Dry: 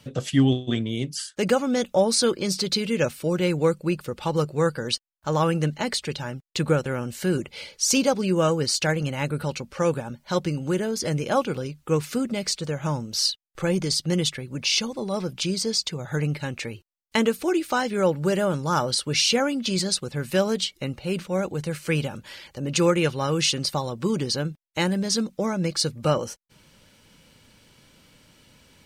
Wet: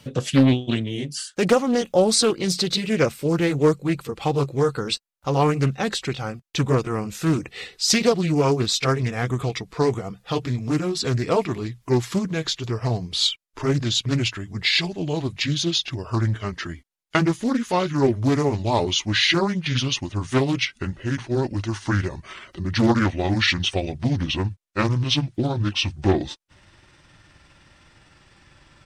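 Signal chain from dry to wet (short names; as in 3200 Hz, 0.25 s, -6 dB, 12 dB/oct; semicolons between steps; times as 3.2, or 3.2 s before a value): gliding pitch shift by -9 st starting unshifted; Doppler distortion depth 0.54 ms; gain +3.5 dB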